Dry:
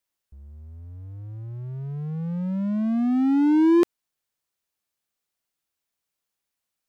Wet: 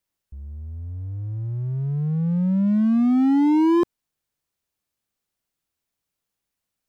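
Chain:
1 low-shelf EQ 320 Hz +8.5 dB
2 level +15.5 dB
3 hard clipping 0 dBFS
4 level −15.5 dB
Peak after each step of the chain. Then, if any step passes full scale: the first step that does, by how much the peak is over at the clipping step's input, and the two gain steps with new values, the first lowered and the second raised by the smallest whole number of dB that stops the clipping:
−8.0, +7.5, 0.0, −15.5 dBFS
step 2, 7.5 dB
step 2 +7.5 dB, step 4 −7.5 dB

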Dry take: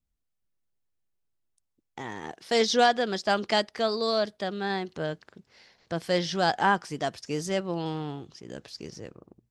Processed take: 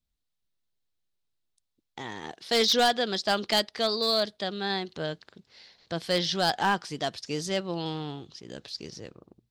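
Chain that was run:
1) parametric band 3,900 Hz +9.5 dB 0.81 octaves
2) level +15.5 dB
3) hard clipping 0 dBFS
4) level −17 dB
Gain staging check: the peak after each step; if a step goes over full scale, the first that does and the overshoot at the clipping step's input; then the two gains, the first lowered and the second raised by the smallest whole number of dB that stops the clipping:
−7.0, +8.5, 0.0, −17.0 dBFS
step 2, 8.5 dB
step 2 +6.5 dB, step 4 −8 dB

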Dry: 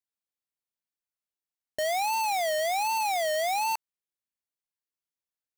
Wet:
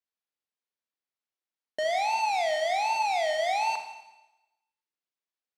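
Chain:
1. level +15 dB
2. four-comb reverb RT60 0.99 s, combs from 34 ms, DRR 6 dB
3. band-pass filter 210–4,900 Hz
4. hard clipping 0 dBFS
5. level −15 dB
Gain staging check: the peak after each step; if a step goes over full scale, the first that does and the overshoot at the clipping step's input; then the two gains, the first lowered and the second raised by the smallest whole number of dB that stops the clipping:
−12.0, −3.5, −2.5, −2.5, −17.5 dBFS
no step passes full scale

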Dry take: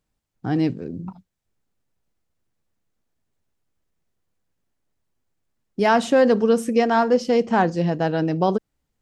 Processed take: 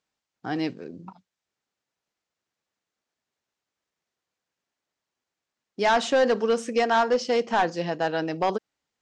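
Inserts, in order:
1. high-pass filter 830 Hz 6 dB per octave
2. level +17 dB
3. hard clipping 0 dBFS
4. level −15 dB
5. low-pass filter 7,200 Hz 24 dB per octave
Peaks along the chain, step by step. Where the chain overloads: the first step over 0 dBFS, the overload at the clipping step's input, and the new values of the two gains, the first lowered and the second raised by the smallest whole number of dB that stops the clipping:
−8.0, +9.0, 0.0, −15.0, −14.0 dBFS
step 2, 9.0 dB
step 2 +8 dB, step 4 −6 dB

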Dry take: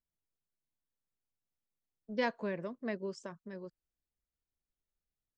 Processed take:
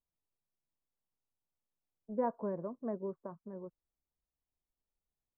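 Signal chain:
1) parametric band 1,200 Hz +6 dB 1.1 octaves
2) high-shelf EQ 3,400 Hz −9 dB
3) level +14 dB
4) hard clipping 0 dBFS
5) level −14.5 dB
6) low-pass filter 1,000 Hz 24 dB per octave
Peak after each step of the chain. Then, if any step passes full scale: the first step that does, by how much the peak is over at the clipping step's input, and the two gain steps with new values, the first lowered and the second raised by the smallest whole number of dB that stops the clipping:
−16.0, −17.5, −3.5, −3.5, −18.0, −21.5 dBFS
no step passes full scale

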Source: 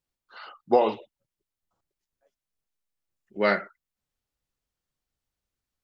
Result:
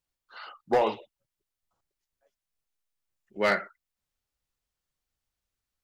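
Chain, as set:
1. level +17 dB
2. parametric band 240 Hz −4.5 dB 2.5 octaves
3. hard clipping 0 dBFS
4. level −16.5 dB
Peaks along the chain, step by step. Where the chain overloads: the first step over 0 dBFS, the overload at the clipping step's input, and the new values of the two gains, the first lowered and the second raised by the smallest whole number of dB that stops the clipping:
+9.5, +7.0, 0.0, −16.5 dBFS
step 1, 7.0 dB
step 1 +10 dB, step 4 −9.5 dB

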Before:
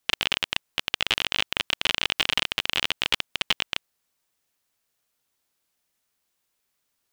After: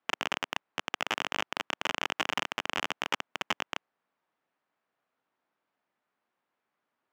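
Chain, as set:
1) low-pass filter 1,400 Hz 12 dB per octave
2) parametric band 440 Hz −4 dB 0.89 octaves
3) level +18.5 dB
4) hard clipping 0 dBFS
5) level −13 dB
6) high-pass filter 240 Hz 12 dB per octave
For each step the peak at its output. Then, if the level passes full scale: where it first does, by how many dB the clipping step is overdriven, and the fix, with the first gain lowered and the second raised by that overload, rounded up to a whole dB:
−9.0, −9.5, +9.0, 0.0, −13.0, −13.0 dBFS
step 3, 9.0 dB
step 3 +9.5 dB, step 5 −4 dB

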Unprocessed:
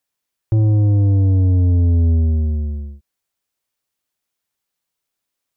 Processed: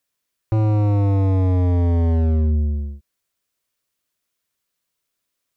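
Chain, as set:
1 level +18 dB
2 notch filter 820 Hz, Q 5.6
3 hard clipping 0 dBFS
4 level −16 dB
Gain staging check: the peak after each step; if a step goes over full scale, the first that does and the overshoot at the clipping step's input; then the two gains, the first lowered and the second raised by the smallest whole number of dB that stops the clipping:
+6.0, +6.5, 0.0, −16.0 dBFS
step 1, 6.5 dB
step 1 +11 dB, step 4 −9 dB

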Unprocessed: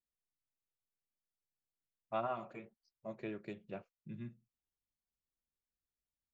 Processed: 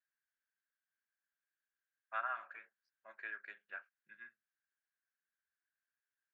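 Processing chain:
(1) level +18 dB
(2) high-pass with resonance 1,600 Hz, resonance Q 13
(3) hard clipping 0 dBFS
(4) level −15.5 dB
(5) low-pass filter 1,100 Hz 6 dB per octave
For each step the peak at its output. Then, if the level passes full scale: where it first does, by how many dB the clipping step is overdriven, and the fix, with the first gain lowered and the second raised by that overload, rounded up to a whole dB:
−7.5, −5.5, −5.5, −21.0, −25.0 dBFS
no step passes full scale

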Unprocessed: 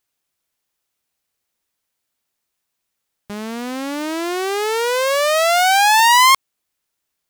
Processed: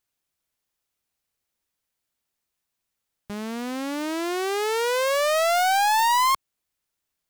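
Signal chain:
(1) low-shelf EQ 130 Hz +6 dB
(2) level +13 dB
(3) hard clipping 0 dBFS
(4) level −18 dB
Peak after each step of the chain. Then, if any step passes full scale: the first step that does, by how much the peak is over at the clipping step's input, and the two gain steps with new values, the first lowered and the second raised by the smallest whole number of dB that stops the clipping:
−4.5, +8.5, 0.0, −18.0 dBFS
step 2, 8.5 dB
step 2 +4 dB, step 4 −9 dB

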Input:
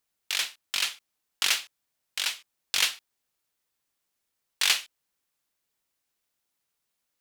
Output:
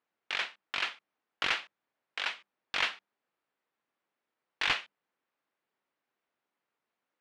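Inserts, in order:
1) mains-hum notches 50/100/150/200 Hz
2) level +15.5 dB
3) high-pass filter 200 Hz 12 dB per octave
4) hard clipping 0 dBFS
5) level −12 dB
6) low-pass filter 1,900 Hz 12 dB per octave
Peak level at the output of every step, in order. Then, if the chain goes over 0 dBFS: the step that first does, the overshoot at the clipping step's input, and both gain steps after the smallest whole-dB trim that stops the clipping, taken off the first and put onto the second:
−7.0, +8.5, +8.5, 0.0, −12.0, −14.5 dBFS
step 2, 8.5 dB
step 2 +6.5 dB, step 5 −3 dB

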